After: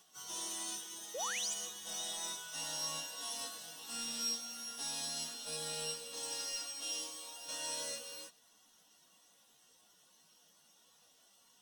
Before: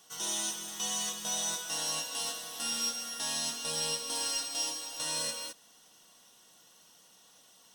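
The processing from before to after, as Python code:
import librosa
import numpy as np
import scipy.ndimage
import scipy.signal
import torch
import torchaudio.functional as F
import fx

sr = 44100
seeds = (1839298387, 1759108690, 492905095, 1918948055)

y = fx.stretch_vocoder_free(x, sr, factor=1.5)
y = fx.spec_paint(y, sr, seeds[0], shape='rise', start_s=1.14, length_s=0.4, low_hz=440.0, high_hz=8600.0, level_db=-37.0)
y = F.gain(torch.from_numpy(y), -4.0).numpy()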